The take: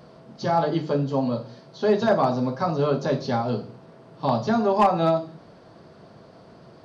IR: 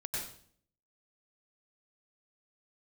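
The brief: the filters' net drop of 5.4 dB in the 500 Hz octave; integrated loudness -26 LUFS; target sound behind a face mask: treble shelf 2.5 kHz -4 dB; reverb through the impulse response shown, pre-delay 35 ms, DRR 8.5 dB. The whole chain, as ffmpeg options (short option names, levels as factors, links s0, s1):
-filter_complex "[0:a]equalizer=f=500:t=o:g=-7,asplit=2[s0][s1];[1:a]atrim=start_sample=2205,adelay=35[s2];[s1][s2]afir=irnorm=-1:irlink=0,volume=0.299[s3];[s0][s3]amix=inputs=2:normalize=0,highshelf=f=2500:g=-4"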